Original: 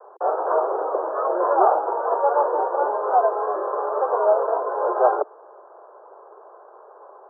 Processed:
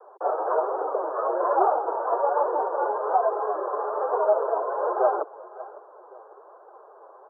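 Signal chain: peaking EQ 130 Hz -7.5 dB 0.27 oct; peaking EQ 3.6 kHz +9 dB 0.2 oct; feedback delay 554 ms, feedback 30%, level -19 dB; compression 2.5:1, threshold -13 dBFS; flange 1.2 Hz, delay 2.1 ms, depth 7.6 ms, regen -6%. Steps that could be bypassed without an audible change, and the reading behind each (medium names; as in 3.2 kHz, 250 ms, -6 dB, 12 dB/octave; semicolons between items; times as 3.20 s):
peaking EQ 130 Hz: input has nothing below 290 Hz; peaking EQ 3.6 kHz: input has nothing above 1.6 kHz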